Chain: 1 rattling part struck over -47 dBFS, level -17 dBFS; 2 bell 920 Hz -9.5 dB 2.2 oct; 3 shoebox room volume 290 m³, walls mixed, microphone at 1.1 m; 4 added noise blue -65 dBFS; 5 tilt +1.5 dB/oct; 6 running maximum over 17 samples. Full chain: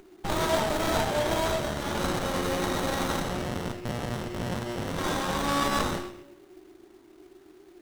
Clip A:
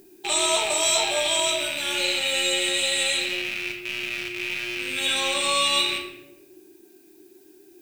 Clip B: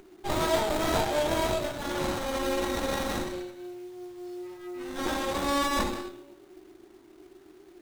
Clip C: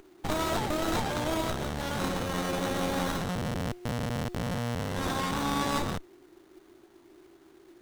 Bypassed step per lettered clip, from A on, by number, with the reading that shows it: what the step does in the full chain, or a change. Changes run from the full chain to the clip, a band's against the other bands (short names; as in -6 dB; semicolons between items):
6, 125 Hz band -21.5 dB; 1, 125 Hz band -5.0 dB; 3, momentary loudness spread change -3 LU